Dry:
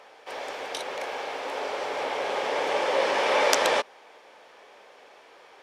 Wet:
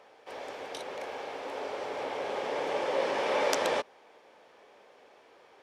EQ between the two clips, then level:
high-pass filter 45 Hz
low-shelf EQ 460 Hz +9.5 dB
−8.5 dB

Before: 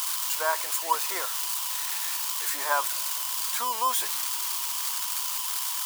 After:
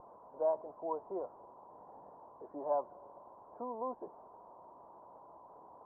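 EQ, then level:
dynamic equaliser 500 Hz, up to −4 dB, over −47 dBFS
Butterworth low-pass 690 Hz 36 dB per octave
low-shelf EQ 110 Hz +8 dB
+3.5 dB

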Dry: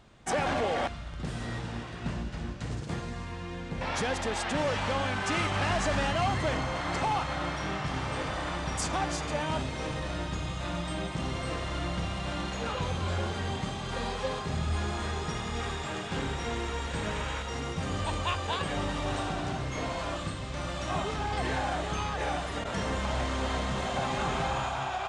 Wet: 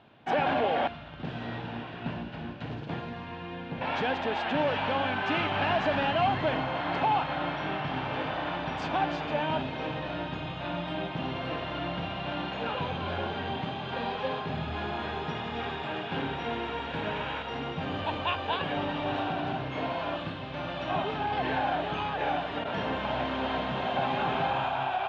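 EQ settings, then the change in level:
loudspeaker in its box 180–3,100 Hz, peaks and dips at 200 Hz −6 dB, 360 Hz −5 dB, 510 Hz −5 dB, 1,200 Hz −8 dB, 2,000 Hz −8 dB
+5.5 dB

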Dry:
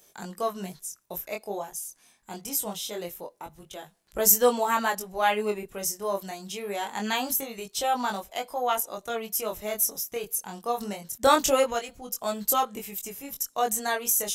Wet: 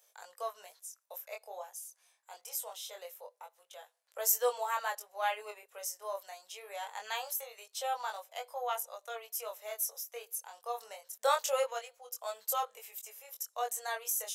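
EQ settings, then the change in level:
elliptic high-pass filter 490 Hz, stop band 40 dB
−8.5 dB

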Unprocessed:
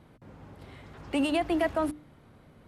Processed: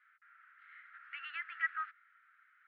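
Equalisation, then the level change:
Chebyshev high-pass with heavy ripple 1,300 Hz, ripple 3 dB
low-pass filter 1,900 Hz 24 dB per octave
high-frequency loss of the air 90 metres
+6.5 dB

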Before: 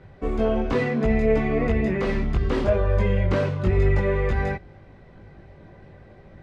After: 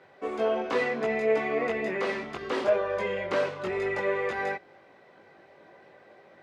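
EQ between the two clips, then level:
high-pass filter 460 Hz 12 dB per octave
0.0 dB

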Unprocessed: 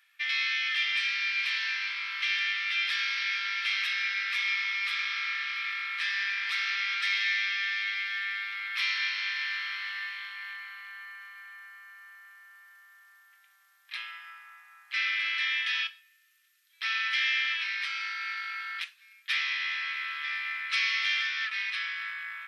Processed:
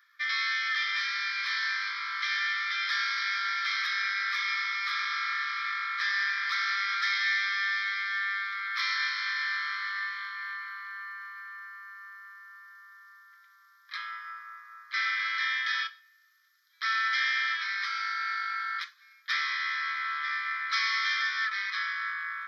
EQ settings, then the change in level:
high-pass with resonance 1,100 Hz, resonance Q 4.8
parametric band 5,200 Hz +5 dB 0.27 octaves
phaser with its sweep stopped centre 2,700 Hz, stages 6
0.0 dB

